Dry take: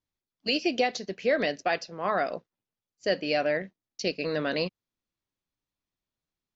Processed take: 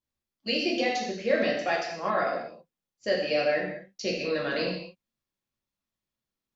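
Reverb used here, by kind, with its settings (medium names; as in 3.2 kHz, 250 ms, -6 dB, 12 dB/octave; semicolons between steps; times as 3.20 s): gated-style reverb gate 280 ms falling, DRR -3.5 dB; trim -4.5 dB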